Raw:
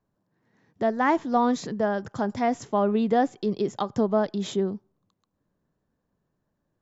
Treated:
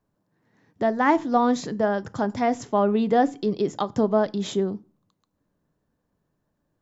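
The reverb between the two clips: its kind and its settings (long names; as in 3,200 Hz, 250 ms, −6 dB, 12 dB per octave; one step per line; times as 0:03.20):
feedback delay network reverb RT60 0.3 s, low-frequency decay 1.5×, high-frequency decay 0.9×, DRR 15.5 dB
level +2 dB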